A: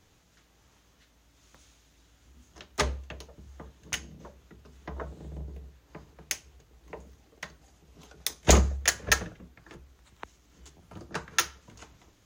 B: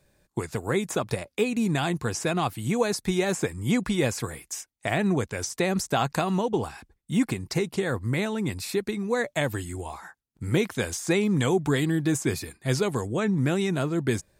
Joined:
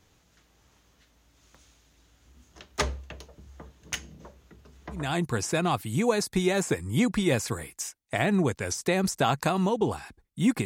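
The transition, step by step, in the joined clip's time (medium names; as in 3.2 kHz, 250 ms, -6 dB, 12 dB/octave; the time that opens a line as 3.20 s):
A
5.04 s: go over to B from 1.76 s, crossfade 0.28 s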